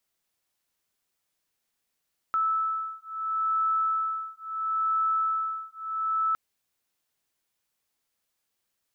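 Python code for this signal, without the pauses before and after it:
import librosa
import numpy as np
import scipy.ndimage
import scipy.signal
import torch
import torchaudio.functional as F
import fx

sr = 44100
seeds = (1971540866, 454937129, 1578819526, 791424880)

y = fx.two_tone_beats(sr, length_s=4.01, hz=1310.0, beat_hz=0.74, level_db=-28.0)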